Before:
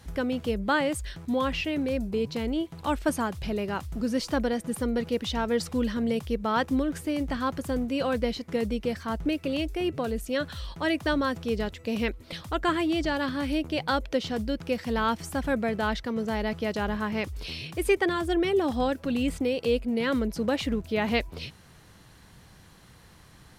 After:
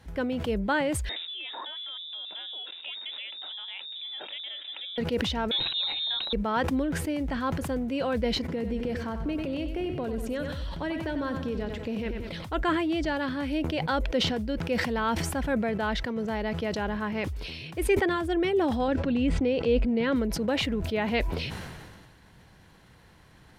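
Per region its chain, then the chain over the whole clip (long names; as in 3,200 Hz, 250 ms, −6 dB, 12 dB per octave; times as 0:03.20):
0:01.09–0:04.98: voice inversion scrambler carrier 3,700 Hz + high-pass filter 250 Hz 24 dB per octave + downward compressor, threshold −32 dBFS
0:05.51–0:06.33: notch filter 1,900 Hz, Q 10 + voice inversion scrambler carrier 3,900 Hz
0:08.40–0:12.45: low-shelf EQ 500 Hz +5.5 dB + downward compressor 5 to 1, threshold −26 dBFS + repeating echo 94 ms, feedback 51%, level −9 dB
0:18.88–0:20.16: low-pass filter 5,400 Hz + low-shelf EQ 350 Hz +5 dB
whole clip: bass and treble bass −2 dB, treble −8 dB; notch filter 1,200 Hz, Q 11; level that may fall only so fast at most 32 dB per second; level −1 dB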